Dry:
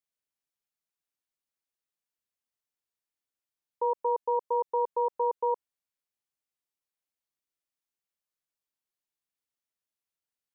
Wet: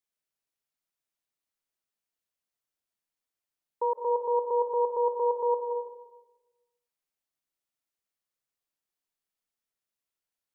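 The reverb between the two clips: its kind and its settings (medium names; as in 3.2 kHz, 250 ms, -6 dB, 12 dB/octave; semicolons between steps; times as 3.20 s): algorithmic reverb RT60 1.1 s, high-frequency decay 0.35×, pre-delay 120 ms, DRR 5 dB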